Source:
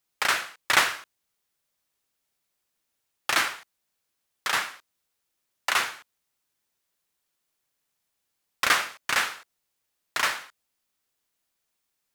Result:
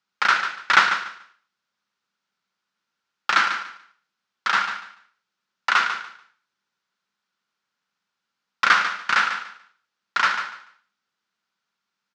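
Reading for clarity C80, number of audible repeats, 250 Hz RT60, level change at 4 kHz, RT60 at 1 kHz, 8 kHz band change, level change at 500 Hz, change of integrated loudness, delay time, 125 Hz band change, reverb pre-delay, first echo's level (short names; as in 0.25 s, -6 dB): none, 2, none, +1.5 dB, none, -6.5 dB, -2.0 dB, +4.5 dB, 0.145 s, n/a, none, -9.5 dB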